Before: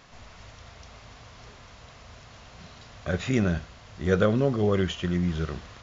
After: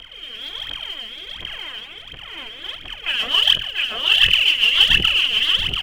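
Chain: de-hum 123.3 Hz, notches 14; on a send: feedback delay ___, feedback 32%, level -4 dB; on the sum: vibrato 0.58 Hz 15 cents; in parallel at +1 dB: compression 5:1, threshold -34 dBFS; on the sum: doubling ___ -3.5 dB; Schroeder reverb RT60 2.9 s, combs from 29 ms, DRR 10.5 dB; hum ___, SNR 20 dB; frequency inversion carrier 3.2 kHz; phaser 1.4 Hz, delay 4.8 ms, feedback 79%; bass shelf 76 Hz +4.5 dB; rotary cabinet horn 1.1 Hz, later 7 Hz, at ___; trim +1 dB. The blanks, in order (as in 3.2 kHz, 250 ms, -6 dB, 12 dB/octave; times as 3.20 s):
687 ms, 42 ms, 50 Hz, 2.18 s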